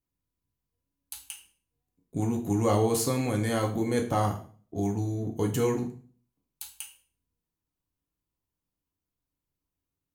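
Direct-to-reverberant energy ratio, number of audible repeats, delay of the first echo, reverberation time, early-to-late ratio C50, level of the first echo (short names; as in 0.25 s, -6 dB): 1.5 dB, none, none, 0.45 s, 10.5 dB, none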